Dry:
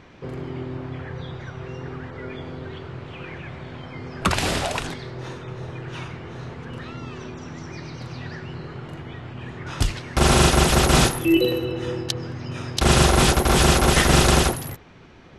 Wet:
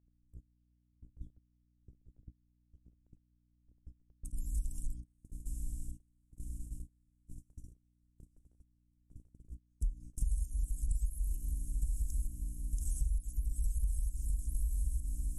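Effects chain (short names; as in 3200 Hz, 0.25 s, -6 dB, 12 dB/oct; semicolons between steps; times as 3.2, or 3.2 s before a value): random spectral dropouts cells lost 27%; passive tone stack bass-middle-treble 10-0-1; in parallel at -11 dB: one-sided clip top -37 dBFS; on the sum: high shelf 3300 Hz -11.5 dB; on a send: diffused feedback echo 1.049 s, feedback 56%, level -7 dB; on the sum: chopper 1.1 Hz, depth 65%, duty 50%; inverse Chebyshev band-stop 100–4500 Hz, stop band 40 dB; hum 60 Hz, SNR 21 dB; gate -56 dBFS, range -25 dB; compressor 10:1, threshold -44 dBFS, peak gain reduction 17 dB; mismatched tape noise reduction encoder only; gain +15 dB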